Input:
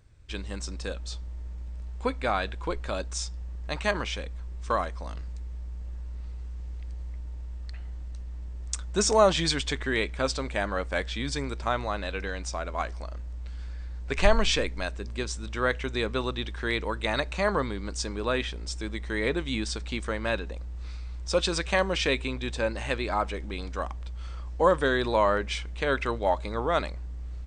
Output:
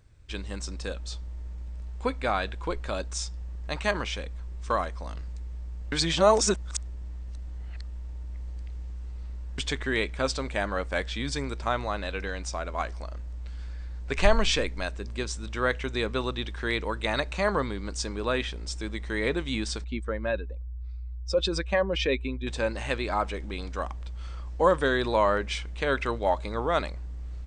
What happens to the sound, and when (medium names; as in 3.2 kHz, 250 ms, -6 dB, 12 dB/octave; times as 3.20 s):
5.92–9.58 s: reverse
19.84–22.47 s: spectral contrast enhancement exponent 1.6